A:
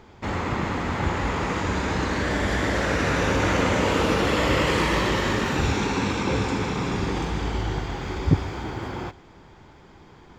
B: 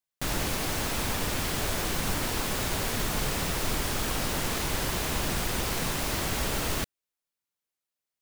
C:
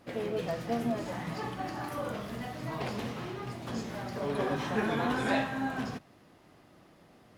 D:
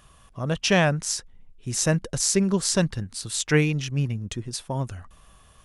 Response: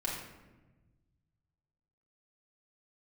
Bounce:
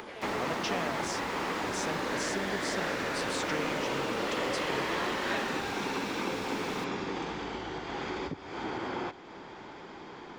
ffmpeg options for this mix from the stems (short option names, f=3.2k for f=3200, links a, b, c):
-filter_complex "[0:a]acompressor=threshold=-30dB:ratio=12,volume=2dB[a];[1:a]volume=-9.5dB[b];[2:a]highpass=530,acrossover=split=730[c][d];[c]aeval=exprs='val(0)*(1-0.7/2+0.7/2*cos(2*PI*2.9*n/s))':c=same[e];[d]aeval=exprs='val(0)*(1-0.7/2-0.7/2*cos(2*PI*2.9*n/s))':c=same[f];[e][f]amix=inputs=2:normalize=0,volume=-1.5dB[g];[3:a]acompressor=threshold=-30dB:ratio=6,volume=-2.5dB[h];[a][b][g][h]amix=inputs=4:normalize=0,acrossover=split=200 6500:gain=0.112 1 0.2[i][j][k];[i][j][k]amix=inputs=3:normalize=0,acompressor=mode=upward:threshold=-39dB:ratio=2.5"